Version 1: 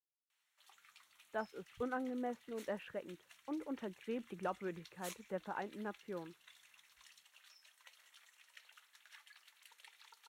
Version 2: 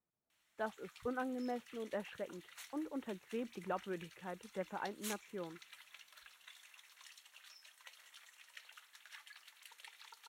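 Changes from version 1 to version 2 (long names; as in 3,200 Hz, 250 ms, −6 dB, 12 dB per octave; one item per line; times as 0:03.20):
speech: entry −0.75 s
background +4.5 dB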